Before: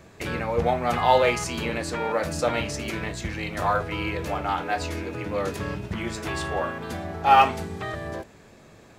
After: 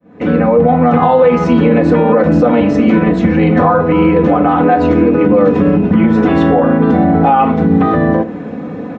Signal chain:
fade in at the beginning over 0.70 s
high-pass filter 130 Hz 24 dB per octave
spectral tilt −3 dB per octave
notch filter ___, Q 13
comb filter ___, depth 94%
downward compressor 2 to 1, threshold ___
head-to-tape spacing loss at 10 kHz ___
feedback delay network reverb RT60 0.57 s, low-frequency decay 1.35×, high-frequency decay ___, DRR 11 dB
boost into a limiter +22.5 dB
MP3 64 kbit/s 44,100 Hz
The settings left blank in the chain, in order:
4,700 Hz, 4 ms, −31 dBFS, 33 dB, 0.8×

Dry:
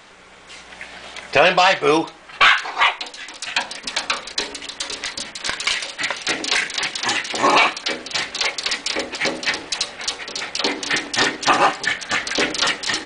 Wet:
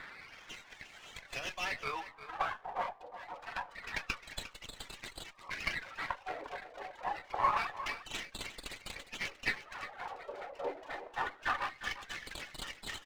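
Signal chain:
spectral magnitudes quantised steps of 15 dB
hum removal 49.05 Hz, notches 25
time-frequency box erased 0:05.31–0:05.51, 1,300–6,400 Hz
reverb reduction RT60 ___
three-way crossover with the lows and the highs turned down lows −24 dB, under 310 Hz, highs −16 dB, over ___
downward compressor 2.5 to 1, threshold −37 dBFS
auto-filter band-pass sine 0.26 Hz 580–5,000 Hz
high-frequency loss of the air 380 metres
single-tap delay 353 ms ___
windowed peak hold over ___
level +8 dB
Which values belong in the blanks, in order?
0.68 s, 6,500 Hz, −13 dB, 5 samples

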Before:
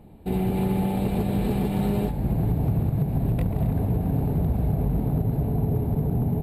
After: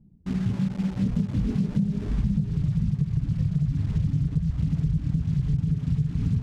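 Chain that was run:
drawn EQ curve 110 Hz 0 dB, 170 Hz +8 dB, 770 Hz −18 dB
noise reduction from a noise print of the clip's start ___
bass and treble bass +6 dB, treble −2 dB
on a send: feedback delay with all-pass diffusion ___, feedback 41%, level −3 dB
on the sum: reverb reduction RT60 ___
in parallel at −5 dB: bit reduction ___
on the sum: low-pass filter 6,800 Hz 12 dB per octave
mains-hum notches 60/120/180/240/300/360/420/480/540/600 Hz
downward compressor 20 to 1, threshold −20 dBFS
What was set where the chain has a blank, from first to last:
13 dB, 580 ms, 1.2 s, 6 bits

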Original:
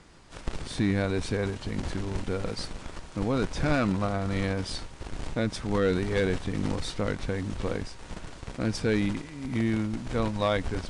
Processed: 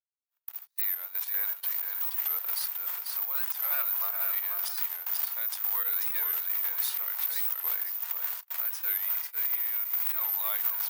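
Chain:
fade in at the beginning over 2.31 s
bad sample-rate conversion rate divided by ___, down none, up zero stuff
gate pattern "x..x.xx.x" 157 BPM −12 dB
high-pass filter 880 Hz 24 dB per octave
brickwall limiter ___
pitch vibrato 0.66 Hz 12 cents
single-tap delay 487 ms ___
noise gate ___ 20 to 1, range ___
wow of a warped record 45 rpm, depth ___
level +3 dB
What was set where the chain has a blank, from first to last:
3×, −21.5 dBFS, −5 dB, −40 dBFS, −30 dB, 160 cents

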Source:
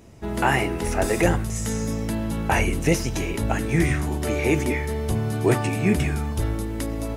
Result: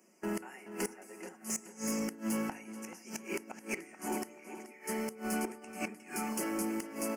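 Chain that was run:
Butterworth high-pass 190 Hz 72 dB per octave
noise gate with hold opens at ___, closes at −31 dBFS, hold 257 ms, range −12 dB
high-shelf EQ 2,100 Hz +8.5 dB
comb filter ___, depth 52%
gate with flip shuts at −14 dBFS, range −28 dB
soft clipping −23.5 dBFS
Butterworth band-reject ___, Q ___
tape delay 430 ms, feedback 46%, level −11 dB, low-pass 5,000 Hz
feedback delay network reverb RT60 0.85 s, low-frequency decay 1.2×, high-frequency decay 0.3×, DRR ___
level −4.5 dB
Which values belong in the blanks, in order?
−29 dBFS, 5.4 ms, 3,700 Hz, 1.8, 17 dB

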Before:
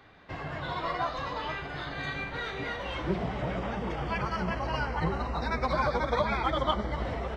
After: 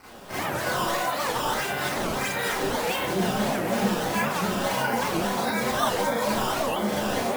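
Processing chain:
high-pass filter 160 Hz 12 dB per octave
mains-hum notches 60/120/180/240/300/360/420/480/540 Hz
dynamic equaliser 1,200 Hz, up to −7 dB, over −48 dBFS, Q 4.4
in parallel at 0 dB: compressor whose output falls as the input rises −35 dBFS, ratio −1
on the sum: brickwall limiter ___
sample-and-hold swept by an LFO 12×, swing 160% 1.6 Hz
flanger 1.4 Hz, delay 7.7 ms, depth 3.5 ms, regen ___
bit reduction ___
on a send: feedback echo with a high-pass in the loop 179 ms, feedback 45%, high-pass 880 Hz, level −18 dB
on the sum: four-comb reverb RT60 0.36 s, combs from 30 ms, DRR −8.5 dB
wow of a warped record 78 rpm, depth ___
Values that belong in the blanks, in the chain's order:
−22 dBFS, +71%, 9 bits, 250 cents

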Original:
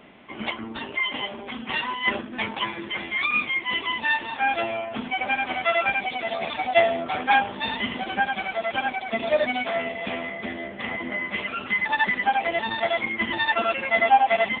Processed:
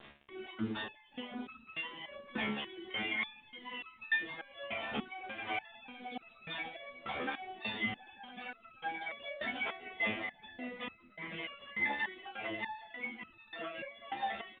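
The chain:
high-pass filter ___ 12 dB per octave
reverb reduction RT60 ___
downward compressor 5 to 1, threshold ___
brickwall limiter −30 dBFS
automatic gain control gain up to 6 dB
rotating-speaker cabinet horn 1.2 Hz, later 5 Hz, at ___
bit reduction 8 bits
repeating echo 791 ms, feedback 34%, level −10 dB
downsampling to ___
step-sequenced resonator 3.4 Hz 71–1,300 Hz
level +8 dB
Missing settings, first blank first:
48 Hz, 1.4 s, −32 dBFS, 0:05.95, 8,000 Hz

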